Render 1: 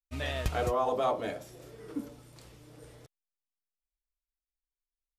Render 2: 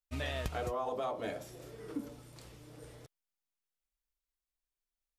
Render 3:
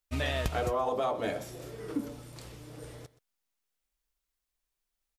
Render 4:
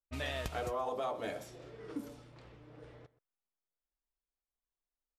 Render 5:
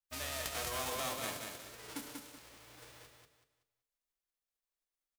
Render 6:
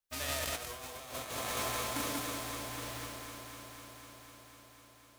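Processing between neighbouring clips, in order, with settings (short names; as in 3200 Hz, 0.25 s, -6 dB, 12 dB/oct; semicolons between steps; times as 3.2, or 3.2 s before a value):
compressor 6:1, threshold -33 dBFS, peak gain reduction 9 dB
echo 0.125 s -18.5 dB; gain +6 dB
low-pass opened by the level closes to 1100 Hz, open at -32 dBFS; low shelf 330 Hz -4 dB; gain -5.5 dB
spectral whitening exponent 0.3; notches 50/100/150/200/250/300/350/400/450 Hz; on a send: feedback echo 0.189 s, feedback 31%, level -4.5 dB; on the sum: gain -3 dB
random-step tremolo; echo with dull and thin repeats by turns 0.125 s, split 910 Hz, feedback 89%, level -7.5 dB; negative-ratio compressor -44 dBFS, ratio -0.5; gain +7 dB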